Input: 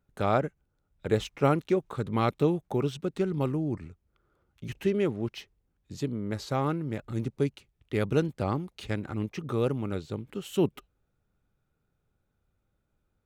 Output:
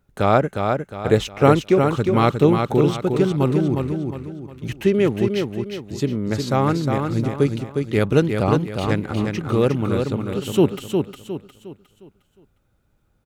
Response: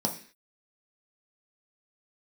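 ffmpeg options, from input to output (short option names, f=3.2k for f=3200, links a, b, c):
-af "aecho=1:1:358|716|1074|1432|1790:0.562|0.214|0.0812|0.0309|0.0117,volume=9dB"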